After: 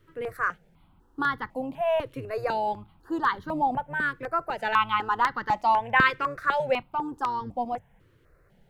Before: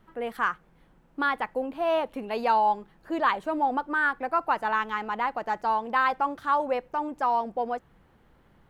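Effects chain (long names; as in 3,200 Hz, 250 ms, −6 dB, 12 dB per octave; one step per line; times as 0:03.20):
sub-octave generator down 1 octave, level −4 dB
0:04.59–0:06.83: parametric band 2,200 Hz +10 dB 2.3 octaves
floating-point word with a short mantissa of 8 bits
step-sequenced phaser 4 Hz 210–2,500 Hz
level +1 dB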